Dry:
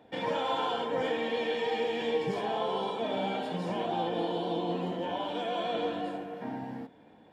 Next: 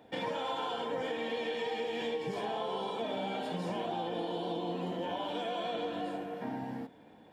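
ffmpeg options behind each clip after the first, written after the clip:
-af "highshelf=f=6.6k:g=6,acompressor=threshold=-32dB:ratio=6"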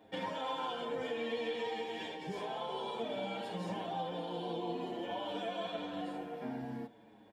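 -filter_complex "[0:a]asplit=2[a][b];[b]adelay=7,afreqshift=-0.54[c];[a][c]amix=inputs=2:normalize=1"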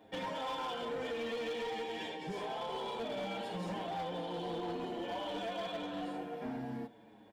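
-af "asoftclip=type=hard:threshold=-35.5dB,volume=1dB"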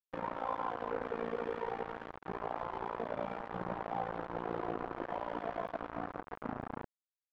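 -af "acrusher=bits=5:mix=0:aa=0.000001,tremolo=f=57:d=0.947,lowpass=f=1.2k:t=q:w=1.5,volume=1dB"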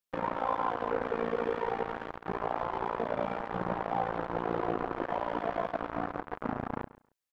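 -af "aecho=1:1:137|274:0.119|0.0202,volume=6dB"

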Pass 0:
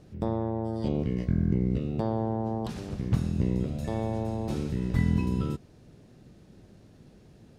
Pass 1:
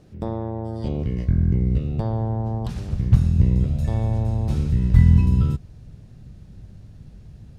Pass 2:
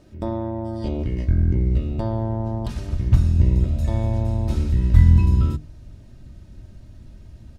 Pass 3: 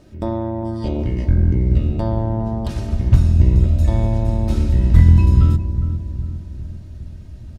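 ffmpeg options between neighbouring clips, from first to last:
-af "asubboost=boost=7.5:cutoff=120,volume=1.5dB"
-af "bandreject=f=50:t=h:w=6,bandreject=f=100:t=h:w=6,bandreject=f=150:t=h:w=6,bandreject=f=200:t=h:w=6,bandreject=f=250:t=h:w=6,bandreject=f=300:t=h:w=6,bandreject=f=350:t=h:w=6,bandreject=f=400:t=h:w=6,bandreject=f=450:t=h:w=6,aecho=1:1:3.2:0.53,volume=1dB"
-filter_complex "[0:a]asplit=2[a][b];[b]adelay=408,lowpass=f=850:p=1,volume=-9.5dB,asplit=2[c][d];[d]adelay=408,lowpass=f=850:p=1,volume=0.55,asplit=2[e][f];[f]adelay=408,lowpass=f=850:p=1,volume=0.55,asplit=2[g][h];[h]adelay=408,lowpass=f=850:p=1,volume=0.55,asplit=2[i][j];[j]adelay=408,lowpass=f=850:p=1,volume=0.55,asplit=2[k][l];[l]adelay=408,lowpass=f=850:p=1,volume=0.55[m];[c][e][g][i][k][m]amix=inputs=6:normalize=0[n];[a][n]amix=inputs=2:normalize=0,asoftclip=type=hard:threshold=-5.5dB,volume=3.5dB"

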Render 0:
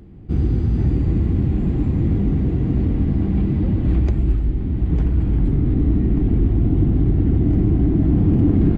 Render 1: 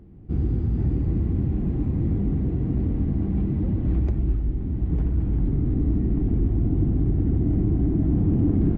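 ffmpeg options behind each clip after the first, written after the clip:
-af "highshelf=f=2k:g=-10,volume=-5dB"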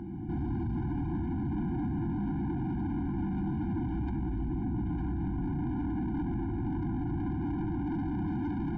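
-filter_complex "[0:a]asplit=2[a][b];[b]highpass=f=720:p=1,volume=35dB,asoftclip=type=tanh:threshold=-11dB[c];[a][c]amix=inputs=2:normalize=0,lowpass=f=1.1k:p=1,volume=-6dB,alimiter=limit=-20.5dB:level=0:latency=1,afftfilt=real='re*eq(mod(floor(b*sr/1024/350),2),0)':imag='im*eq(mod(floor(b*sr/1024/350),2),0)':win_size=1024:overlap=0.75,volume=-7dB"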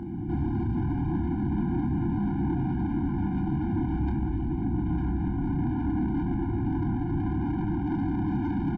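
-filter_complex "[0:a]asplit=2[a][b];[b]adelay=29,volume=-7dB[c];[a][c]amix=inputs=2:normalize=0,volume=4dB"

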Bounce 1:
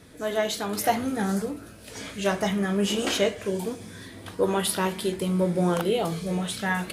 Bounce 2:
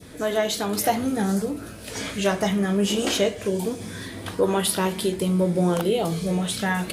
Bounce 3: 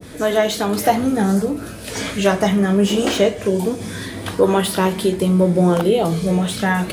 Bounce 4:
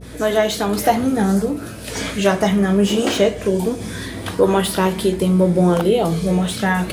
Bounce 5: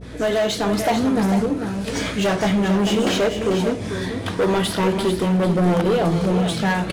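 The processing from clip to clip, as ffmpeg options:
-filter_complex "[0:a]adynamicequalizer=threshold=0.00891:dfrequency=1500:dqfactor=0.76:tfrequency=1500:tqfactor=0.76:attack=5:release=100:ratio=0.375:range=2.5:mode=cutabove:tftype=bell,asplit=2[a][b];[b]acompressor=threshold=-32dB:ratio=6,volume=2dB[c];[a][c]amix=inputs=2:normalize=0"
-filter_complex "[0:a]acrossover=split=160|3200[a][b][c];[c]asoftclip=type=tanh:threshold=-26.5dB[d];[a][b][d]amix=inputs=3:normalize=0,adynamicequalizer=threshold=0.01:dfrequency=2000:dqfactor=0.7:tfrequency=2000:tqfactor=0.7:attack=5:release=100:ratio=0.375:range=2:mode=cutabove:tftype=highshelf,volume=6.5dB"
-af "aeval=exprs='val(0)+0.0126*(sin(2*PI*60*n/s)+sin(2*PI*2*60*n/s)/2+sin(2*PI*3*60*n/s)/3+sin(2*PI*4*60*n/s)/4+sin(2*PI*5*60*n/s)/5)':c=same"
-af "adynamicsmooth=sensitivity=3.5:basefreq=6.2k,asoftclip=type=hard:threshold=-15.5dB,aecho=1:1:443:0.398"

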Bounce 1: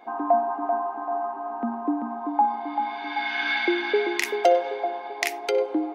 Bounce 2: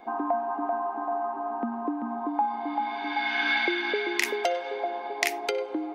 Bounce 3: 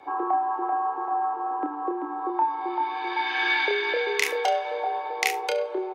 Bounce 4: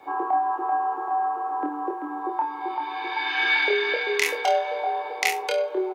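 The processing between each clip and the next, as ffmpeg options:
-filter_complex "[0:a]lowshelf=f=200:g=10,acrossover=split=1100|1900[a][b][c];[a]acompressor=threshold=-28dB:ratio=6[d];[d][b][c]amix=inputs=3:normalize=0"
-af "afreqshift=62,aecho=1:1:29|71:0.562|0.141"
-filter_complex "[0:a]acrusher=bits=11:mix=0:aa=0.000001,asplit=2[a][b];[b]adelay=24,volume=-4dB[c];[a][c]amix=inputs=2:normalize=0"

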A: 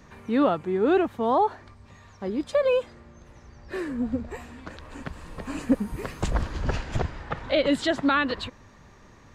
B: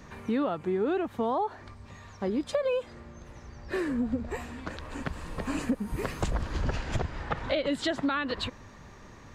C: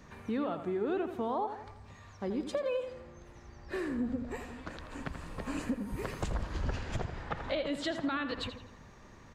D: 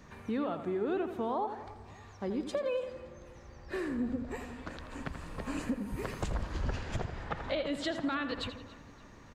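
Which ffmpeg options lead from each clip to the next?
-af "acompressor=threshold=-28dB:ratio=6,volume=2.5dB"
-filter_complex "[0:a]asplit=2[a][b];[b]adelay=83,lowpass=f=3.7k:p=1,volume=-9dB,asplit=2[c][d];[d]adelay=83,lowpass=f=3.7k:p=1,volume=0.51,asplit=2[e][f];[f]adelay=83,lowpass=f=3.7k:p=1,volume=0.51,asplit=2[g][h];[h]adelay=83,lowpass=f=3.7k:p=1,volume=0.51,asplit=2[i][j];[j]adelay=83,lowpass=f=3.7k:p=1,volume=0.51,asplit=2[k][l];[l]adelay=83,lowpass=f=3.7k:p=1,volume=0.51[m];[a][c][e][g][i][k][m]amix=inputs=7:normalize=0,volume=-5.5dB"
-filter_complex "[0:a]asplit=2[a][b];[b]adelay=284,lowpass=f=4.8k:p=1,volume=-19dB,asplit=2[c][d];[d]adelay=284,lowpass=f=4.8k:p=1,volume=0.49,asplit=2[e][f];[f]adelay=284,lowpass=f=4.8k:p=1,volume=0.49,asplit=2[g][h];[h]adelay=284,lowpass=f=4.8k:p=1,volume=0.49[i];[a][c][e][g][i]amix=inputs=5:normalize=0"

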